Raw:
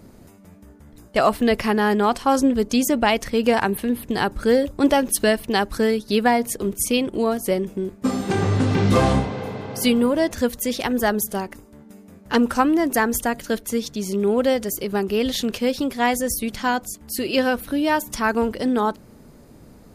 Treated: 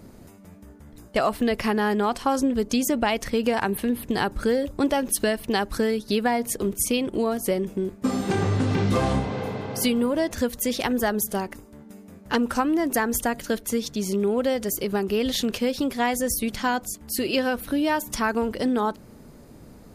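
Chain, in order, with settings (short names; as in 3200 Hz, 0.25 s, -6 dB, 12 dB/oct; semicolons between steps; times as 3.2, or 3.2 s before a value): compressor 3:1, threshold -20 dBFS, peak gain reduction 7 dB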